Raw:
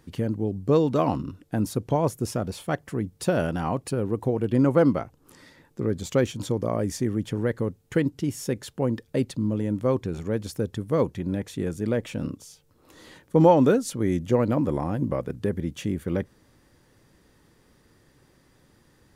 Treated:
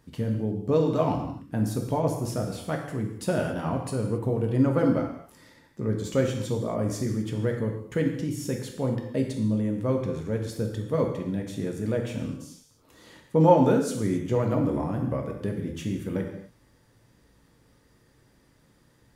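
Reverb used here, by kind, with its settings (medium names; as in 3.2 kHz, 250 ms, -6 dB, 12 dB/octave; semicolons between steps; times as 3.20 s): gated-style reverb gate 300 ms falling, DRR 1.5 dB; trim -4.5 dB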